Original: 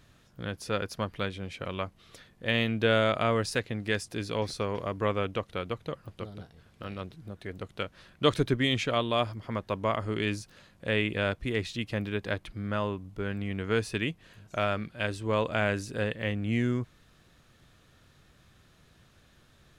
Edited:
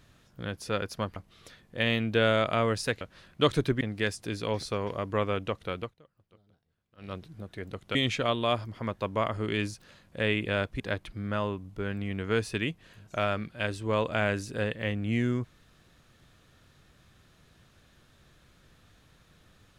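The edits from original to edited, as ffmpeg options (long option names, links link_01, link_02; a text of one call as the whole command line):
ffmpeg -i in.wav -filter_complex "[0:a]asplit=8[link_01][link_02][link_03][link_04][link_05][link_06][link_07][link_08];[link_01]atrim=end=1.162[link_09];[link_02]atrim=start=1.838:end=3.692[link_10];[link_03]atrim=start=7.828:end=8.632[link_11];[link_04]atrim=start=3.688:end=5.82,asetpts=PTS-STARTPTS,afade=type=out:start_time=1.992:duration=0.14:silence=0.0749894[link_12];[link_05]atrim=start=5.82:end=6.85,asetpts=PTS-STARTPTS,volume=-22.5dB[link_13];[link_06]atrim=start=6.85:end=7.832,asetpts=PTS-STARTPTS,afade=type=in:duration=0.14:silence=0.0749894[link_14];[link_07]atrim=start=8.628:end=11.482[link_15];[link_08]atrim=start=12.198[link_16];[link_09][link_10]acrossfade=duration=0.004:curve1=hsin:curve2=hsin[link_17];[link_17][link_11]acrossfade=duration=0.004:curve1=hsin:curve2=hsin[link_18];[link_12][link_13][link_14]concat=n=3:v=0:a=1[link_19];[link_18][link_19]acrossfade=duration=0.004:curve1=hsin:curve2=hsin[link_20];[link_20][link_15]acrossfade=duration=0.004:curve1=hsin:curve2=hsin[link_21];[link_21][link_16]acrossfade=duration=0.004:curve1=hsin:curve2=hsin" out.wav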